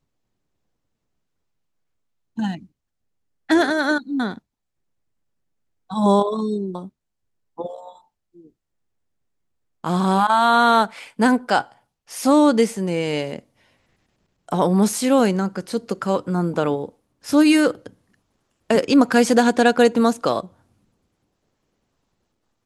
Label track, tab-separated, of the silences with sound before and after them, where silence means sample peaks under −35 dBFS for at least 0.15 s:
2.630000	3.490000	silence
4.380000	5.900000	silence
6.880000	7.580000	silence
7.910000	9.840000	silence
11.720000	12.100000	silence
13.390000	14.490000	silence
16.890000	17.240000	silence
17.870000	18.700000	silence